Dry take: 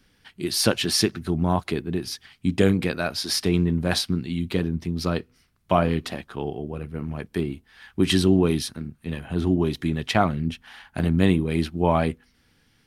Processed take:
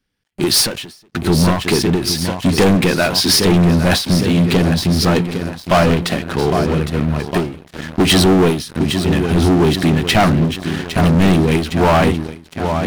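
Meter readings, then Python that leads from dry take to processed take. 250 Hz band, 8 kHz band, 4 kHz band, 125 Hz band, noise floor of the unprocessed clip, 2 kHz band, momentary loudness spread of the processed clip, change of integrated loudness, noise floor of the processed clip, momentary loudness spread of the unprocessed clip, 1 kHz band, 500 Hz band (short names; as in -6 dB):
+9.0 dB, +10.0 dB, +10.5 dB, +10.0 dB, -64 dBFS, +11.0 dB, 10 LU, +9.5 dB, -45 dBFS, 12 LU, +10.0 dB, +9.5 dB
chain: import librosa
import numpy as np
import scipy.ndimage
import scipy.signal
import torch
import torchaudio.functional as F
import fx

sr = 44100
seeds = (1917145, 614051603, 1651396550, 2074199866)

y = fx.echo_feedback(x, sr, ms=808, feedback_pct=56, wet_db=-13.0)
y = fx.leveller(y, sr, passes=5)
y = fx.end_taper(y, sr, db_per_s=110.0)
y = F.gain(torch.from_numpy(y), -2.5).numpy()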